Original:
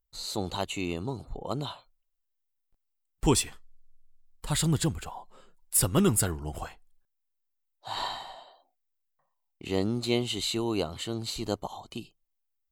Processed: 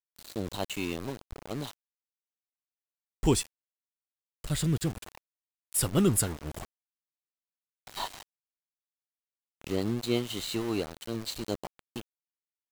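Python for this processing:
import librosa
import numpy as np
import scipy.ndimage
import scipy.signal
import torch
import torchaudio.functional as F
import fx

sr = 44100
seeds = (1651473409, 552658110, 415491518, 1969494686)

y = fx.rotary_switch(x, sr, hz=0.9, then_hz=5.5, switch_at_s=4.79)
y = np.where(np.abs(y) >= 10.0 ** (-36.0 / 20.0), y, 0.0)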